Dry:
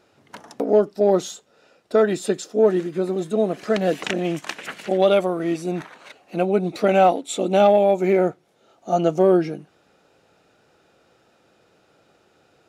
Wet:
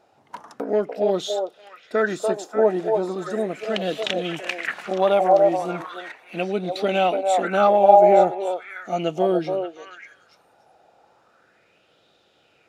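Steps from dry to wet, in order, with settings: repeats whose band climbs or falls 290 ms, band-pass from 650 Hz, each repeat 1.4 oct, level 0 dB; sweeping bell 0.37 Hz 750–3600 Hz +13 dB; trim -5.5 dB

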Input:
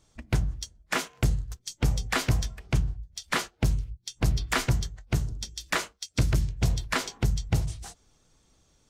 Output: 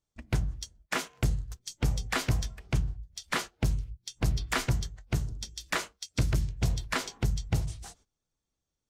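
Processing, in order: gate -55 dBFS, range -19 dB; trim -3 dB

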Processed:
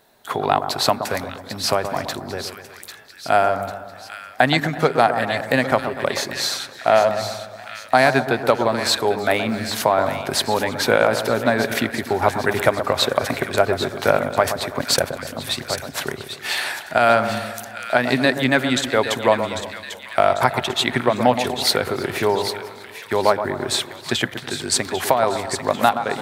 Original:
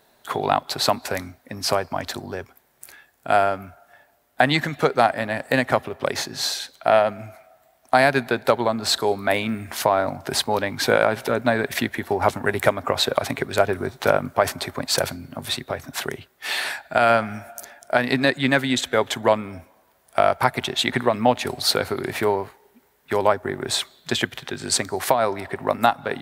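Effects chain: 14.72–15.27 s: transient shaper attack +3 dB, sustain -9 dB; two-band feedback delay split 1.5 kHz, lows 123 ms, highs 796 ms, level -9 dB; modulated delay 326 ms, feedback 51%, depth 125 cents, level -21.5 dB; trim +1.5 dB

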